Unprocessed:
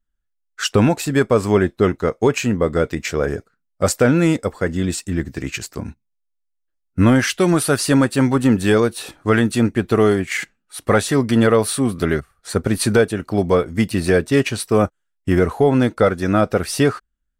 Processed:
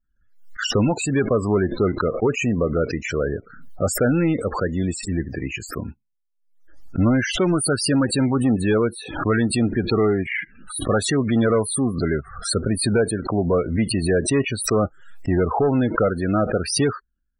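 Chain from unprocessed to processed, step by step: saturation -10.5 dBFS, distortion -15 dB; loudest bins only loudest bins 32; swell ahead of each attack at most 83 dB/s; trim -1.5 dB

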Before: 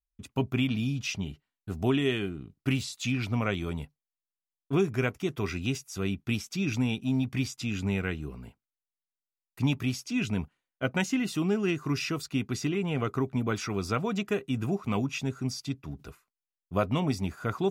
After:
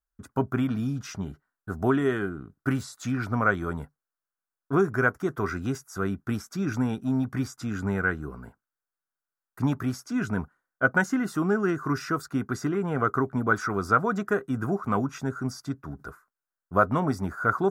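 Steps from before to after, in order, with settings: FFT filter 130 Hz 0 dB, 940 Hz +6 dB, 1.5 kHz +14 dB, 2.6 kHz -15 dB, 5.3 kHz -4 dB, 11 kHz 0 dB

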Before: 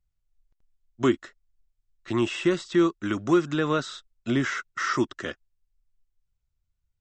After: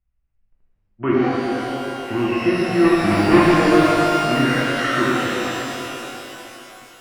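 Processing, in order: 2.84–3.41 s: square wave that keeps the level; steep low-pass 2.9 kHz 96 dB/octave; pitch-shifted reverb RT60 3.4 s, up +12 st, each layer -8 dB, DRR -8 dB; trim -1 dB

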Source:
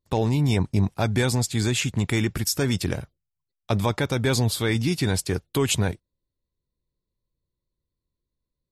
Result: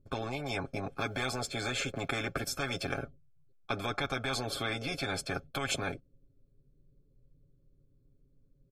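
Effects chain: 0.89–2.95 s: block-companded coder 7-bit; boxcar filter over 46 samples; comb 7.3 ms, depth 77%; spectrum-flattening compressor 10:1; trim -7.5 dB

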